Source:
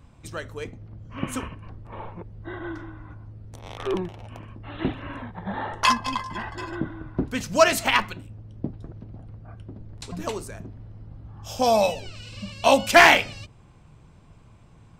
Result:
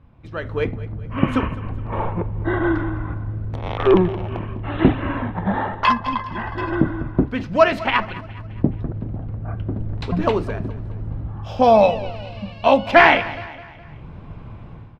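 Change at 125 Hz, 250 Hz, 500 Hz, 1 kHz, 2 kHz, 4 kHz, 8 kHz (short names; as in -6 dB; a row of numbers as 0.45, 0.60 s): +11.5 dB, +9.5 dB, +6.0 dB, +4.5 dB, +1.5 dB, -2.5 dB, under -15 dB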